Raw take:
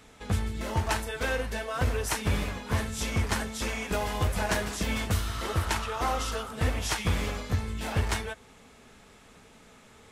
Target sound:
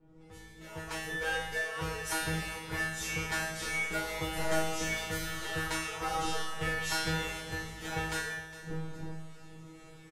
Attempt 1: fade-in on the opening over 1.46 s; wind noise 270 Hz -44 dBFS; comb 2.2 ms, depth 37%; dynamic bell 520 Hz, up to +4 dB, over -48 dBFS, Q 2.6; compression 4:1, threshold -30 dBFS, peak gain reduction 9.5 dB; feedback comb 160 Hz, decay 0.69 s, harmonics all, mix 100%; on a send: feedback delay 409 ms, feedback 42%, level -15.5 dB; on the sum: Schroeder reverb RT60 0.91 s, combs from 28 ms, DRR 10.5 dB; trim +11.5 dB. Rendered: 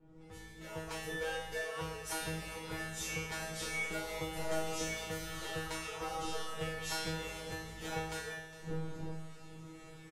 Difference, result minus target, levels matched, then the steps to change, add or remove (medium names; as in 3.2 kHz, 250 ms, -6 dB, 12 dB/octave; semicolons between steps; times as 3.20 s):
compression: peak gain reduction +9.5 dB; 500 Hz band +3.0 dB
change: dynamic bell 1.7 kHz, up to +4 dB, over -48 dBFS, Q 2.6; remove: compression 4:1, threshold -30 dBFS, peak gain reduction 9.5 dB